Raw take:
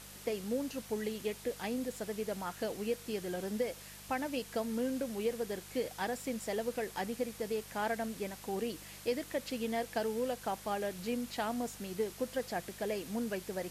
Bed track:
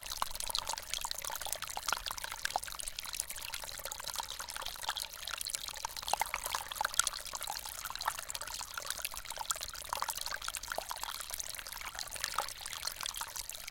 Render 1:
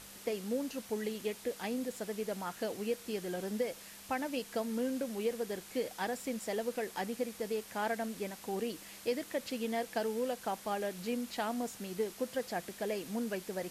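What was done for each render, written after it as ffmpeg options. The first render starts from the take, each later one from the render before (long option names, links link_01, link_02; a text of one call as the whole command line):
ffmpeg -i in.wav -af "bandreject=frequency=50:width_type=h:width=4,bandreject=frequency=100:width_type=h:width=4,bandreject=frequency=150:width_type=h:width=4" out.wav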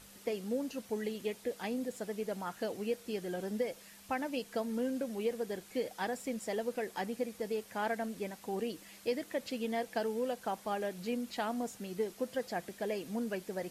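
ffmpeg -i in.wav -af "afftdn=noise_reduction=6:noise_floor=-52" out.wav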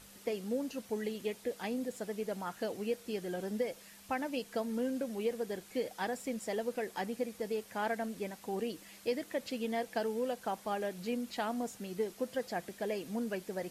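ffmpeg -i in.wav -af anull out.wav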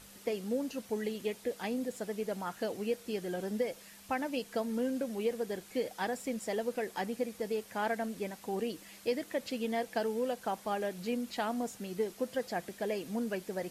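ffmpeg -i in.wav -af "volume=1.5dB" out.wav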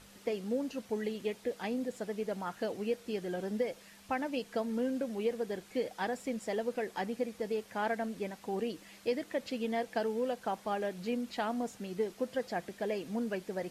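ffmpeg -i in.wav -af "highshelf=frequency=8000:gain=-10" out.wav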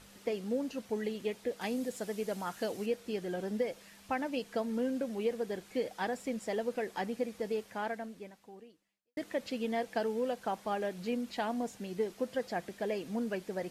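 ffmpeg -i in.wav -filter_complex "[0:a]asettb=1/sr,asplit=3[link_01][link_02][link_03];[link_01]atrim=end=1.614[link_04];[link_02]atrim=start=1.61:end=2.86,asetpts=PTS-STARTPTS,afade=type=in:duration=0.004:curve=qsin,afade=type=out:start_time=1.246:duration=0.004:curve=qsin,highshelf=frequency=4600:gain=9[link_05];[link_03]atrim=start=2.856[link_06];[link_04][link_05]acrossfade=duration=0.004:curve1=hsin:curve2=qsin[link_07];[link_07][link_06]acrossfade=duration=0.004:curve1=qsin:curve2=hsin,asettb=1/sr,asplit=3[link_08][link_09][link_10];[link_08]atrim=end=11.324[link_11];[link_09]atrim=start=11.32:end=11.98,asetpts=PTS-STARTPTS,afade=type=in:duration=0.004:curve=qsin,afade=type=out:start_time=0.656:duration=0.004:curve=qsin,bandreject=frequency=1300:width=9.7[link_12];[link_10]atrim=start=11.976[link_13];[link_11][link_12]acrossfade=duration=0.004:curve1=hsin:curve2=qsin[link_14];[link_14][link_13]acrossfade=duration=0.004:curve1=qsin:curve2=hsin,asplit=2[link_15][link_16];[link_15]atrim=end=9.17,asetpts=PTS-STARTPTS,afade=type=out:start_time=7.57:duration=1.6:curve=qua[link_17];[link_16]atrim=start=9.17,asetpts=PTS-STARTPTS,afade=type=in:duration=0.004:curve=hsin[link_18];[link_17][link_18]concat=n=2:v=0:a=1" out.wav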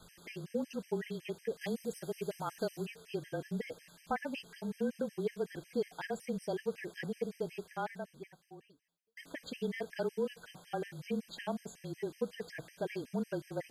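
ffmpeg -i in.wav -af "afreqshift=-28,afftfilt=real='re*gt(sin(2*PI*5.4*pts/sr)*(1-2*mod(floor(b*sr/1024/1600),2)),0)':imag='im*gt(sin(2*PI*5.4*pts/sr)*(1-2*mod(floor(b*sr/1024/1600),2)),0)':win_size=1024:overlap=0.75" out.wav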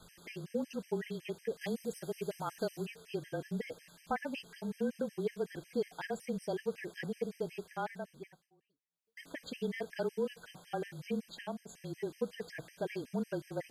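ffmpeg -i in.wav -filter_complex "[0:a]asplit=4[link_01][link_02][link_03][link_04];[link_01]atrim=end=8.5,asetpts=PTS-STARTPTS,afade=type=out:start_time=8.21:duration=0.29:curve=qsin:silence=0.125893[link_05];[link_02]atrim=start=8.5:end=8.9,asetpts=PTS-STARTPTS,volume=-18dB[link_06];[link_03]atrim=start=8.9:end=11.69,asetpts=PTS-STARTPTS,afade=type=in:duration=0.29:curve=qsin:silence=0.125893,afade=type=out:start_time=2.25:duration=0.54:silence=0.473151[link_07];[link_04]atrim=start=11.69,asetpts=PTS-STARTPTS,afade=type=in:duration=0.004:curve=hsin:silence=0.473151[link_08];[link_05][link_06][link_07][link_08]concat=n=4:v=0:a=1" out.wav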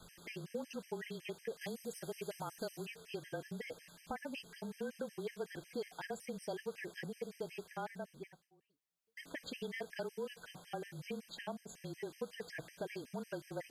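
ffmpeg -i in.wav -filter_complex "[0:a]acrossover=split=610|4700[link_01][link_02][link_03];[link_01]acompressor=threshold=-43dB:ratio=6[link_04];[link_02]alimiter=level_in=12dB:limit=-24dB:level=0:latency=1:release=408,volume=-12dB[link_05];[link_04][link_05][link_03]amix=inputs=3:normalize=0" out.wav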